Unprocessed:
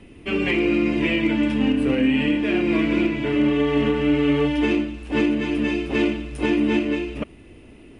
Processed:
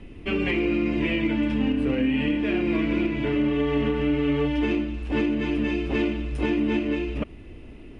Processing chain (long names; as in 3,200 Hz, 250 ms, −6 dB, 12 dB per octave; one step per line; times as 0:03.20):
low-shelf EQ 61 Hz +11 dB
downward compressor 2 to 1, threshold −23 dBFS, peak gain reduction 5 dB
high-frequency loss of the air 67 metres